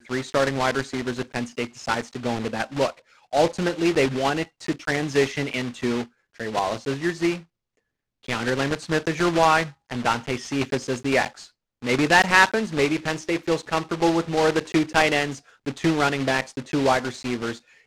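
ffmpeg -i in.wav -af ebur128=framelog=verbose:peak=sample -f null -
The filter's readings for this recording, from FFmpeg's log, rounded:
Integrated loudness:
  I:         -23.5 LUFS
  Threshold: -33.7 LUFS
Loudness range:
  LRA:         5.4 LU
  Threshold: -43.7 LUFS
  LRA low:   -26.6 LUFS
  LRA high:  -21.2 LUFS
Sample peak:
  Peak:       -1.9 dBFS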